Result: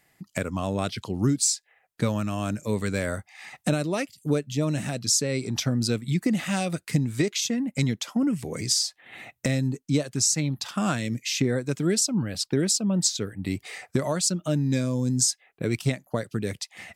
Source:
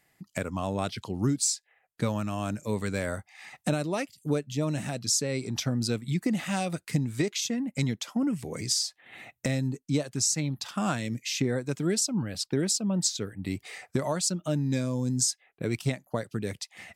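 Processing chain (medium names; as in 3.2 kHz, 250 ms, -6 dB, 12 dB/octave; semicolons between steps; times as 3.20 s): dynamic bell 860 Hz, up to -4 dB, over -45 dBFS, Q 2.2; trim +3.5 dB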